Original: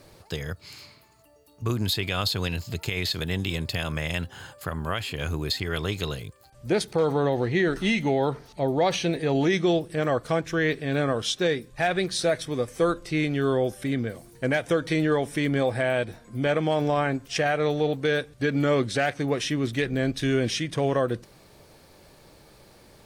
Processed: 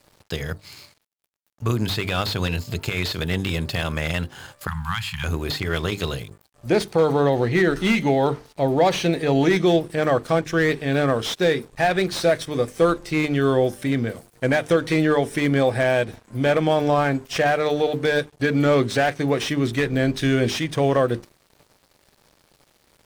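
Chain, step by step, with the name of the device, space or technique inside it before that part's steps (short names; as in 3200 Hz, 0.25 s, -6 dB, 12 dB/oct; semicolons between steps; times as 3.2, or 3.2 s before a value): notches 50/100/150/200/250/300/350/400/450 Hz; early transistor amplifier (crossover distortion -50.5 dBFS; slew limiter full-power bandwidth 120 Hz); 4.67–5.24 Chebyshev band-stop 200–850 Hz, order 4; gain +5.5 dB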